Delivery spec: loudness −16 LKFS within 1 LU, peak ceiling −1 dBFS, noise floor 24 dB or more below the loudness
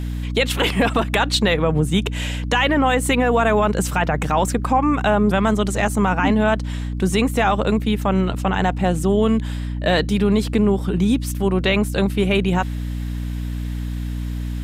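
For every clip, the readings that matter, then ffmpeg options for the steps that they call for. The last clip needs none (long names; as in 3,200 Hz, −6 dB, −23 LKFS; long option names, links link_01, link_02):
mains hum 60 Hz; hum harmonics up to 300 Hz; level of the hum −23 dBFS; integrated loudness −19.5 LKFS; sample peak −6.5 dBFS; target loudness −16.0 LKFS
→ -af "bandreject=frequency=60:width_type=h:width=6,bandreject=frequency=120:width_type=h:width=6,bandreject=frequency=180:width_type=h:width=6,bandreject=frequency=240:width_type=h:width=6,bandreject=frequency=300:width_type=h:width=6"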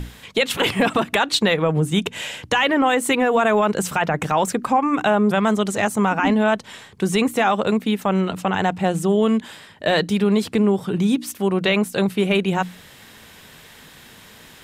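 mains hum none found; integrated loudness −20.0 LKFS; sample peak −7.0 dBFS; target loudness −16.0 LKFS
→ -af "volume=4dB"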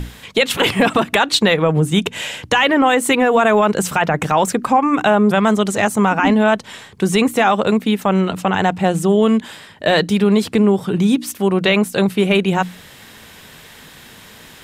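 integrated loudness −16.0 LKFS; sample peak −3.0 dBFS; background noise floor −42 dBFS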